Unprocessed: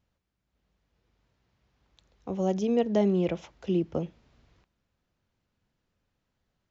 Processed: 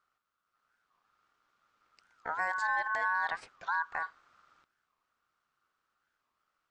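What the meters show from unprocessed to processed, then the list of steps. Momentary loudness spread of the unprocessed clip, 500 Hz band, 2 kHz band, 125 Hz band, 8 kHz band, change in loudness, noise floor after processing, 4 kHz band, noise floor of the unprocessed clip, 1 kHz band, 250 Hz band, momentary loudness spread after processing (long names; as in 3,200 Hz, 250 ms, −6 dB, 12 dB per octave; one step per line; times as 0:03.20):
13 LU, −19.5 dB, +18.5 dB, below −30 dB, can't be measured, −5.0 dB, −84 dBFS, −5.5 dB, −81 dBFS, +8.0 dB, below −35 dB, 9 LU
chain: brickwall limiter −21.5 dBFS, peak gain reduction 9 dB
ring modulation 1,300 Hz
wow of a warped record 45 rpm, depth 250 cents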